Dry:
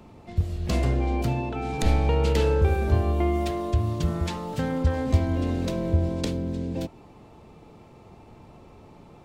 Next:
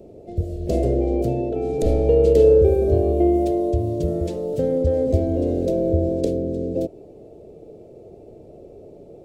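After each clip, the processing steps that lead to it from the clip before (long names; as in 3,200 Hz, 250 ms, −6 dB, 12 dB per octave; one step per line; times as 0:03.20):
drawn EQ curve 230 Hz 0 dB, 410 Hz +13 dB, 640 Hz +10 dB, 960 Hz −19 dB, 8,700 Hz −2 dB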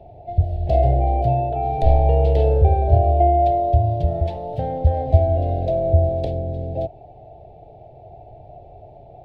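drawn EQ curve 130 Hz 0 dB, 200 Hz −16 dB, 330 Hz −17 dB, 510 Hz −15 dB, 750 Hz +11 dB, 1,200 Hz −12 dB, 1,800 Hz −4 dB, 3,700 Hz −5 dB, 7,200 Hz −28 dB, 10,000 Hz −24 dB
level +6.5 dB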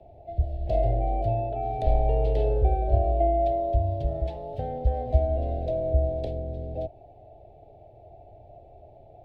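frequency shifter −16 Hz
level −7 dB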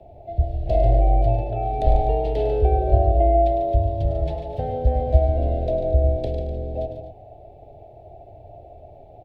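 multi-tap delay 103/144/224/250 ms −9/−8.5/−17.5/−15 dB
level +4.5 dB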